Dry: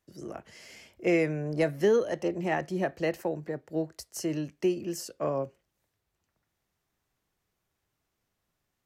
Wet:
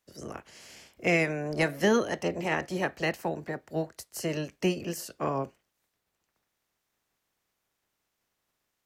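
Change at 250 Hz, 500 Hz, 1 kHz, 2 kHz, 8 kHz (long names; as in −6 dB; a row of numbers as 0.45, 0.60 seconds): −0.5, −2.0, +3.0, +5.5, +2.0 decibels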